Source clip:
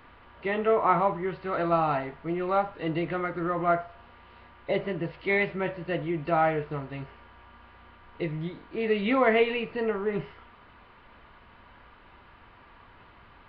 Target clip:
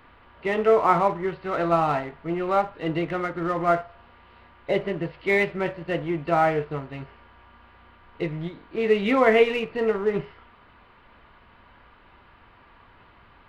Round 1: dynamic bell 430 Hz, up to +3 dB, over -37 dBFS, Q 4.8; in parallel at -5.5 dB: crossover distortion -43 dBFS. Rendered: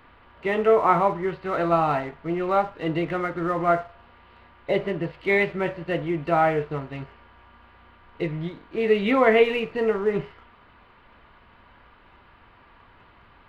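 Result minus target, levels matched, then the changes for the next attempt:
crossover distortion: distortion -7 dB
change: crossover distortion -34.5 dBFS

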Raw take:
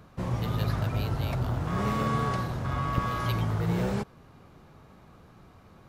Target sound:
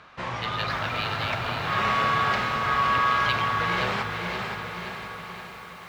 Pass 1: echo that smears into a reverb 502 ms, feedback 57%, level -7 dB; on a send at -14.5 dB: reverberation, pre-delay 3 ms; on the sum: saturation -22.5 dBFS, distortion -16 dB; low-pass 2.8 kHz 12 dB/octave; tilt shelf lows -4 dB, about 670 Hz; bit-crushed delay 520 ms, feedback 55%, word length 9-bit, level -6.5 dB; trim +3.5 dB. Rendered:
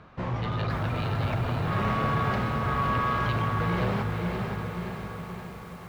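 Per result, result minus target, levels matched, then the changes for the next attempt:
saturation: distortion +12 dB; 500 Hz band +3.5 dB
change: saturation -14.5 dBFS, distortion -28 dB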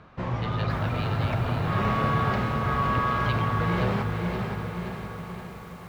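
500 Hz band +3.5 dB
change: tilt shelf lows -14 dB, about 670 Hz

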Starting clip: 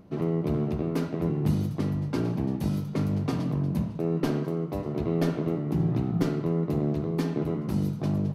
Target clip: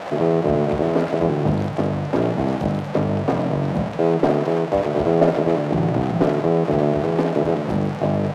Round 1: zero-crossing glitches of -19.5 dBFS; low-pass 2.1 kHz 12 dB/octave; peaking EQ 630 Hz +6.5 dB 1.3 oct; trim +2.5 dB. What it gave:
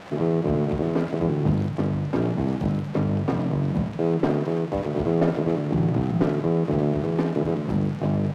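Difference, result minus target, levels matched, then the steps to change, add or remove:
zero-crossing glitches: distortion -6 dB; 500 Hz band -2.5 dB
change: zero-crossing glitches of -13 dBFS; change: peaking EQ 630 Hz +16 dB 1.3 oct

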